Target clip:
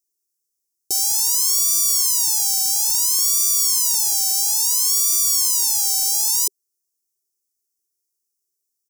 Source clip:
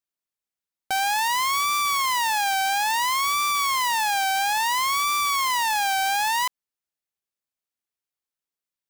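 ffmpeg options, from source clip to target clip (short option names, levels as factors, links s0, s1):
-af "firequalizer=gain_entry='entry(100,0);entry(210,-5);entry(390,12);entry(580,-13);entry(1600,-30);entry(5500,14)':delay=0.05:min_phase=1"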